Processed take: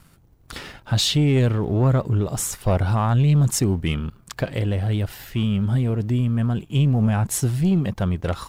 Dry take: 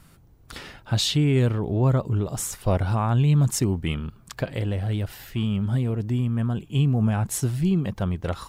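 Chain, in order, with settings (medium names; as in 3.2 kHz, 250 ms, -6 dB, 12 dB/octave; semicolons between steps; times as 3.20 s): waveshaping leveller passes 1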